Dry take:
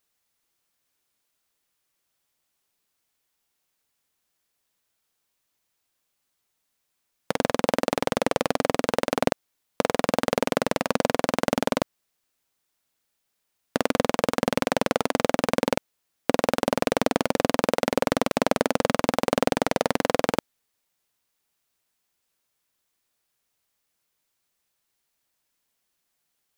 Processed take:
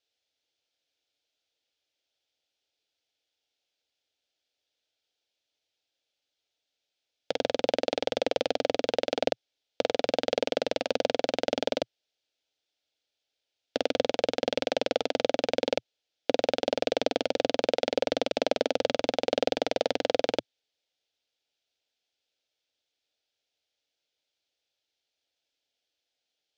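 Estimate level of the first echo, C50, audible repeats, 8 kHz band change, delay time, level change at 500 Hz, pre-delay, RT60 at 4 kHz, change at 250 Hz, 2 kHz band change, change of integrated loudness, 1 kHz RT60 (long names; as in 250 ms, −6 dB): no echo audible, no reverb audible, no echo audible, −9.0 dB, no echo audible, −2.0 dB, no reverb audible, no reverb audible, −8.5 dB, −6.5 dB, −3.5 dB, no reverb audible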